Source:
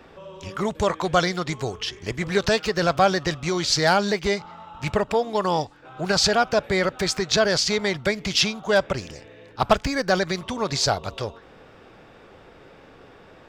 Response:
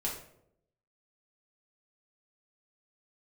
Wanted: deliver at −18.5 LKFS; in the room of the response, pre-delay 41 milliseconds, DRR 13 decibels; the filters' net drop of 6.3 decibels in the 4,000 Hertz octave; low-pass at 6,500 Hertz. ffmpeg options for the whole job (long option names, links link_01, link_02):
-filter_complex "[0:a]lowpass=6500,equalizer=frequency=4000:width_type=o:gain=-7,asplit=2[link_01][link_02];[1:a]atrim=start_sample=2205,adelay=41[link_03];[link_02][link_03]afir=irnorm=-1:irlink=0,volume=-16.5dB[link_04];[link_01][link_04]amix=inputs=2:normalize=0,volume=5.5dB"